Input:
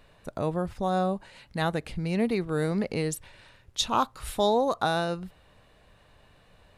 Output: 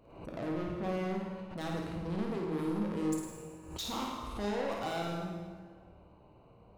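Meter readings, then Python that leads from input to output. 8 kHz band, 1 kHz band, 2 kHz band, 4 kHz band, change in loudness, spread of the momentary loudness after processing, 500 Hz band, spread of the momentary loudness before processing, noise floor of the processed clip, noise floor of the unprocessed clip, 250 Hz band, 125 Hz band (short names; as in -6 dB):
-9.0 dB, -11.0 dB, -9.0 dB, -10.0 dB, -8.0 dB, 11 LU, -9.0 dB, 12 LU, -59 dBFS, -60 dBFS, -5.0 dB, -7.0 dB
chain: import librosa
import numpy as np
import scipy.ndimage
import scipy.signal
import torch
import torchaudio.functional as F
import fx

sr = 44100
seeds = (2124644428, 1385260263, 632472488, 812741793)

p1 = fx.wiener(x, sr, points=25)
p2 = fx.highpass(p1, sr, hz=110.0, slope=6)
p3 = fx.peak_eq(p2, sr, hz=320.0, db=5.5, octaves=0.37)
p4 = fx.over_compress(p3, sr, threshold_db=-32.0, ratio=-1.0)
p5 = p3 + (p4 * 10.0 ** (-2.0 / 20.0))
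p6 = 10.0 ** (-27.0 / 20.0) * np.tanh(p5 / 10.0 ** (-27.0 / 20.0))
p7 = p6 + fx.room_flutter(p6, sr, wall_m=9.2, rt60_s=0.64, dry=0)
p8 = fx.rev_plate(p7, sr, seeds[0], rt60_s=1.7, hf_ratio=0.75, predelay_ms=0, drr_db=0.5)
p9 = fx.pre_swell(p8, sr, db_per_s=80.0)
y = p9 * 10.0 ** (-8.5 / 20.0)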